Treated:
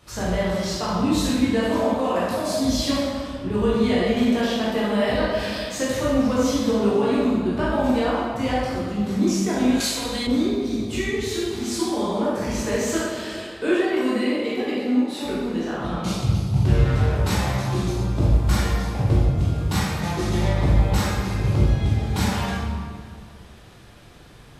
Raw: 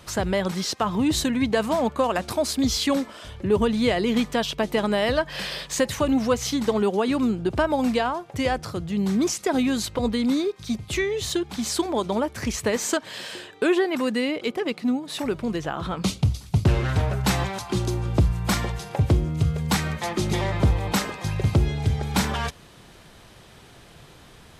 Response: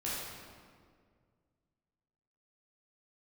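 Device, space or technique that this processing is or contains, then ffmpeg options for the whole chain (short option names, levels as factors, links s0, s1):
stairwell: -filter_complex "[1:a]atrim=start_sample=2205[s0];[0:a][s0]afir=irnorm=-1:irlink=0,asettb=1/sr,asplit=3[s1][s2][s3];[s1]atrim=end=9.804[s4];[s2]atrim=start=9.8:end=10.27,asetpts=PTS-STARTPTS,afade=t=in:d=0.004:c=qsin,afade=t=out:st=0.466:d=0.004:c=qsin,tiltshelf=f=930:g=-8.5[s5];[s3]atrim=start=10.266[s6];[s4][s5]acrossfade=d=0.004:c1=hsin:c2=qsin[s7];[s7][s6]acrossfade=d=0.004:c1=qsin:c2=hsin,volume=0.631"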